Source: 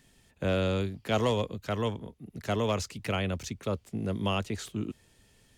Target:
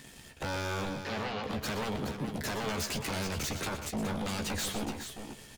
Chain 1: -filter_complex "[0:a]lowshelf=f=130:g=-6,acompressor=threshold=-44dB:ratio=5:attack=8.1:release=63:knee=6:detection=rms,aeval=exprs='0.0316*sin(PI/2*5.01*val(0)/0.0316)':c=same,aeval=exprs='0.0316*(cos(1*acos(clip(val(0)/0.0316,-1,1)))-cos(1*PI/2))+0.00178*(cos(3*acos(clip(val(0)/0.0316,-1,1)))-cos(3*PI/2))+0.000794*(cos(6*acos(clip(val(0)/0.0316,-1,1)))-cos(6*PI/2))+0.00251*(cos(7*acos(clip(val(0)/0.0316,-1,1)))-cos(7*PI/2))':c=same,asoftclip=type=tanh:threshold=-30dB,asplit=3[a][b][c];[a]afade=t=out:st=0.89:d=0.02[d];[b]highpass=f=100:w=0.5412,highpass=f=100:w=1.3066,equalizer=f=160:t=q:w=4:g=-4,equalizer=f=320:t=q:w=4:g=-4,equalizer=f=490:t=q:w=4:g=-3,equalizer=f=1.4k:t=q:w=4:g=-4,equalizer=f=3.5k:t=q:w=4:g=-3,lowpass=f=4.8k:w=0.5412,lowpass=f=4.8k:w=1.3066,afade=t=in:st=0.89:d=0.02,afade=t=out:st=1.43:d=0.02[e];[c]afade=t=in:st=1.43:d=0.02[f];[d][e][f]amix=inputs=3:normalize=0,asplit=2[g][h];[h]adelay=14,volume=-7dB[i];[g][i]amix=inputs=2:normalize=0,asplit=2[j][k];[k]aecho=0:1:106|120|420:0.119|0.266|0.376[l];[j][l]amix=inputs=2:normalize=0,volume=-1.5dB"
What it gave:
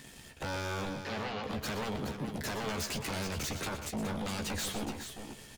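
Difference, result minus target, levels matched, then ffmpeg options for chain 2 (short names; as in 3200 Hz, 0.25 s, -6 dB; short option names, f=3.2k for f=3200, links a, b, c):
soft clip: distortion +20 dB
-filter_complex "[0:a]lowshelf=f=130:g=-6,acompressor=threshold=-44dB:ratio=5:attack=8.1:release=63:knee=6:detection=rms,aeval=exprs='0.0316*sin(PI/2*5.01*val(0)/0.0316)':c=same,aeval=exprs='0.0316*(cos(1*acos(clip(val(0)/0.0316,-1,1)))-cos(1*PI/2))+0.00178*(cos(3*acos(clip(val(0)/0.0316,-1,1)))-cos(3*PI/2))+0.000794*(cos(6*acos(clip(val(0)/0.0316,-1,1)))-cos(6*PI/2))+0.00251*(cos(7*acos(clip(val(0)/0.0316,-1,1)))-cos(7*PI/2))':c=same,asoftclip=type=tanh:threshold=-19dB,asplit=3[a][b][c];[a]afade=t=out:st=0.89:d=0.02[d];[b]highpass=f=100:w=0.5412,highpass=f=100:w=1.3066,equalizer=f=160:t=q:w=4:g=-4,equalizer=f=320:t=q:w=4:g=-4,equalizer=f=490:t=q:w=4:g=-3,equalizer=f=1.4k:t=q:w=4:g=-4,equalizer=f=3.5k:t=q:w=4:g=-3,lowpass=f=4.8k:w=0.5412,lowpass=f=4.8k:w=1.3066,afade=t=in:st=0.89:d=0.02,afade=t=out:st=1.43:d=0.02[e];[c]afade=t=in:st=1.43:d=0.02[f];[d][e][f]amix=inputs=3:normalize=0,asplit=2[g][h];[h]adelay=14,volume=-7dB[i];[g][i]amix=inputs=2:normalize=0,asplit=2[j][k];[k]aecho=0:1:106|120|420:0.119|0.266|0.376[l];[j][l]amix=inputs=2:normalize=0,volume=-1.5dB"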